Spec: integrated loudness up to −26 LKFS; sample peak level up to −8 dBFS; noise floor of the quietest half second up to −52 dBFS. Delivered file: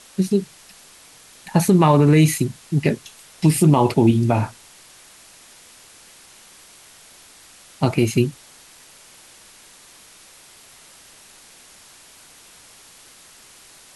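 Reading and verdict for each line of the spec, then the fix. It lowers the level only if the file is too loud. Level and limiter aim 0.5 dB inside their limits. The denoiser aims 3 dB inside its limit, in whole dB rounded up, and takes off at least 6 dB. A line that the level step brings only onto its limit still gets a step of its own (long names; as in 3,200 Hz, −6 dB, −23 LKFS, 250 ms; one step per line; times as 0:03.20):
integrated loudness −18.5 LKFS: out of spec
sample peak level −5.5 dBFS: out of spec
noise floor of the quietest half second −48 dBFS: out of spec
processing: level −8 dB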